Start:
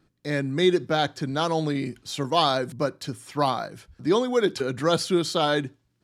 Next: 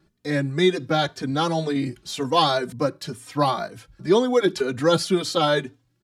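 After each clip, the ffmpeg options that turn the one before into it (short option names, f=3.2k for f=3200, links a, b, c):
-filter_complex "[0:a]asplit=2[a][b];[b]adelay=3.1,afreqshift=2[c];[a][c]amix=inputs=2:normalize=1,volume=5dB"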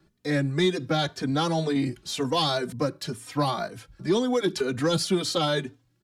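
-filter_complex "[0:a]acrossover=split=270|3000[a][b][c];[b]acompressor=threshold=-23dB:ratio=6[d];[a][d][c]amix=inputs=3:normalize=0,asoftclip=type=tanh:threshold=-12.5dB"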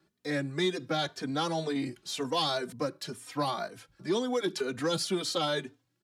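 -af "highpass=f=260:p=1,volume=-4dB"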